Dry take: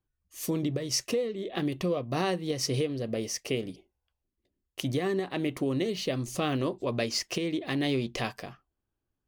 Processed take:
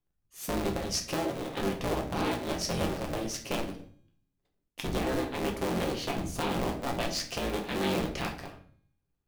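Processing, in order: cycle switcher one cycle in 3, inverted; resonator 270 Hz, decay 0.99 s, mix 40%; on a send: reverb RT60 0.50 s, pre-delay 6 ms, DRR 2 dB

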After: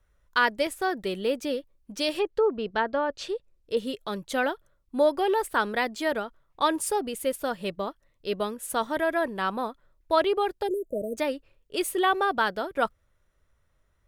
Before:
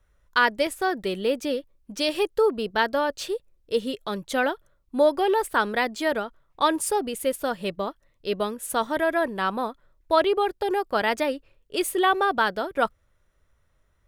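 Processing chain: 2.17–3.77 treble ducked by the level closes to 1400 Hz, closed at -17.5 dBFS; 10.67–11.18 spectral delete 660–6100 Hz; gain -2 dB; MP3 128 kbps 44100 Hz

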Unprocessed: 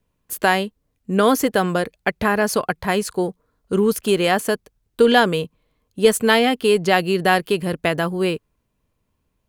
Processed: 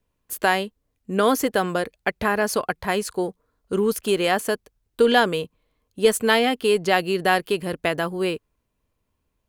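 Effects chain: bell 160 Hz -4.5 dB 1 oct; gain -2.5 dB

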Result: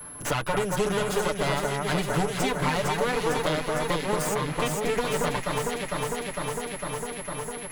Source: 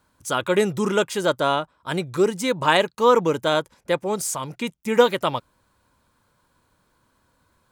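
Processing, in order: minimum comb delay 6.8 ms; compressor, threshold -24 dBFS, peak gain reduction 11.5 dB; whine 11000 Hz -50 dBFS; echo with dull and thin repeats by turns 0.227 s, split 1900 Hz, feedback 82%, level -2.5 dB; three-band squash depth 70%

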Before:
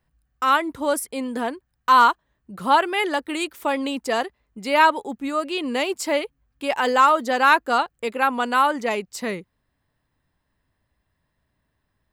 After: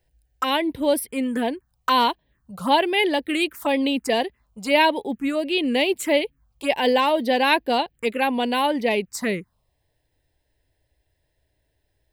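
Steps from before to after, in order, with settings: envelope phaser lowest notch 200 Hz, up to 1300 Hz, full sweep at -22 dBFS; gain +5 dB

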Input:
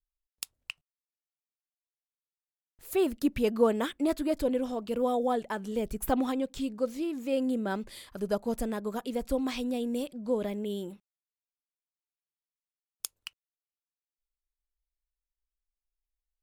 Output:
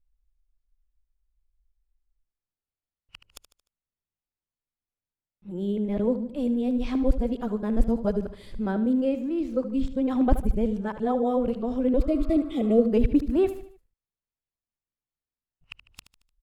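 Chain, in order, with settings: whole clip reversed; spectral repair 12.01–12.83, 850–1900 Hz after; RIAA curve playback; on a send: feedback echo 75 ms, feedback 44%, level -12.5 dB

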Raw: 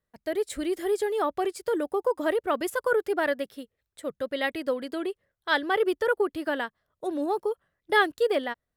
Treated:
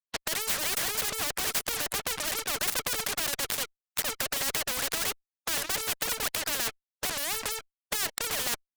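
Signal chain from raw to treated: tracing distortion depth 0.24 ms; rippled Chebyshev high-pass 430 Hz, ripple 9 dB; spectral gate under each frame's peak -30 dB strong; reverse; compressor 20:1, threshold -39 dBFS, peak gain reduction 20.5 dB; reverse; fuzz box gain 56 dB, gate -60 dBFS; spectral compressor 4:1; gain -1.5 dB

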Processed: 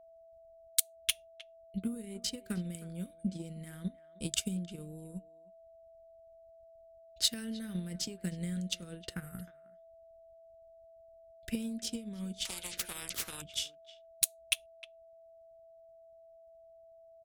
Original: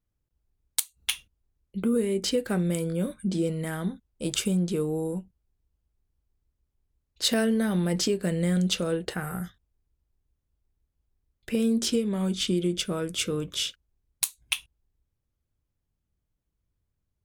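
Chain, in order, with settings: passive tone stack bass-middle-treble 6-0-2; transient shaper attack +11 dB, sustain -7 dB; speakerphone echo 0.31 s, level -17 dB; in parallel at -7 dB: hard clip -22.5 dBFS, distortion -12 dB; on the sum: whine 660 Hz -55 dBFS; 12.45–13.42 spectral compressor 10:1

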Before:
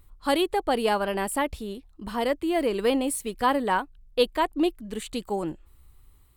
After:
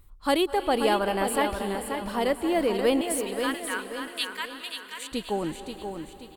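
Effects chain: 3.01–5.12 inverse Chebyshev high-pass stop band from 400 Hz, stop band 60 dB; feedback echo 0.532 s, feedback 42%, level -7 dB; reverb RT60 3.0 s, pre-delay 0.191 s, DRR 12 dB

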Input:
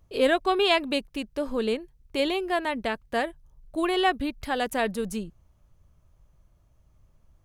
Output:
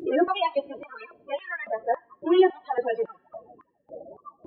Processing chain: delta modulation 32 kbps, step -21.5 dBFS; gate -21 dBFS, range -21 dB; compressor 2:1, threshold -44 dBFS, peak gain reduction 14.5 dB; sample leveller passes 3; plain phase-vocoder stretch 0.6×; loudest bins only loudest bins 16; two-slope reverb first 0.45 s, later 1.8 s, from -20 dB, DRR 17.5 dB; stepped high-pass 3.6 Hz 350–1800 Hz; gain +8 dB

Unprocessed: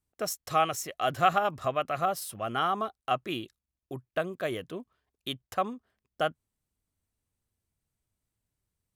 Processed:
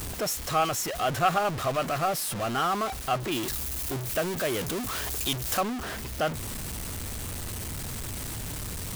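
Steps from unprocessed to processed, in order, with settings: zero-crossing step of -26 dBFS; 3.31–5.59 high shelf 7700 Hz -> 3900 Hz +9.5 dB; gain -2 dB

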